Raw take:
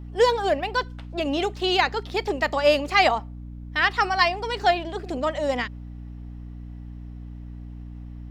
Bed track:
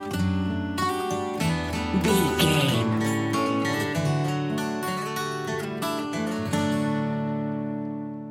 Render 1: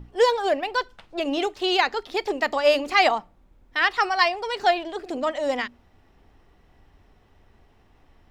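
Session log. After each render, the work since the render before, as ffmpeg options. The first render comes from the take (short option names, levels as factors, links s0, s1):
-af "bandreject=f=60:t=h:w=6,bandreject=f=120:t=h:w=6,bandreject=f=180:t=h:w=6,bandreject=f=240:t=h:w=6,bandreject=f=300:t=h:w=6"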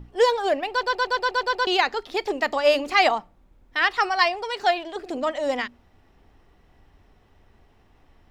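-filter_complex "[0:a]asettb=1/sr,asplit=3[s0][s1][s2];[s0]atrim=end=4.444[s3];[s1]atrim=start=4.44:end=4.96,asetpts=PTS-STARTPTS,afade=t=in:d=0.004:c=qsin,afade=t=out:st=0.516:d=0.004:c=qsin,lowshelf=f=360:g=-5.5[s4];[s2]atrim=start=4.956[s5];[s3][s4]acrossfade=d=0.004:c1=hsin:c2=qsin[s6];[s6][s5]acrossfade=d=0.004:c1=qsin:c2=hsin,asplit=9[s7][s8][s9][s10][s11][s12][s13][s14][s15];[s7]atrim=end=0.832[s16];[s8]atrim=start=0.708:end=0.832[s17];[s9]atrim=start=0.708:end=0.832[s18];[s10]atrim=start=0.708:end=0.832[s19];[s11]atrim=start=0.708:end=0.832[s20];[s12]atrim=start=0.708:end=0.832[s21];[s13]atrim=start=0.708:end=0.832[s22];[s14]atrim=start=0.708:end=0.832[s23];[s15]atrim=start=1.668[s24];[s16][s17]acrossfade=d=0.004:c1=hsin:c2=hsin[s25];[s25][s18]acrossfade=d=0.004:c1=hsin:c2=hsin[s26];[s26][s19]acrossfade=d=0.004:c1=hsin:c2=hsin[s27];[s27][s20]acrossfade=d=0.004:c1=hsin:c2=hsin[s28];[s28][s21]acrossfade=d=0.004:c1=hsin:c2=hsin[s29];[s29][s22]acrossfade=d=0.004:c1=hsin:c2=hsin[s30];[s30][s23]acrossfade=d=0.004:c1=hsin:c2=hsin[s31];[s31][s24]acrossfade=d=0.004:c1=hsin:c2=hsin"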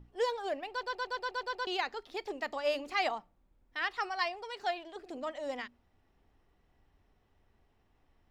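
-af "volume=0.224"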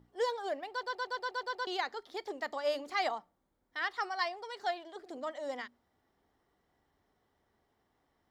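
-af "highpass=f=240:p=1,equalizer=f=2600:t=o:w=0.24:g=-11.5"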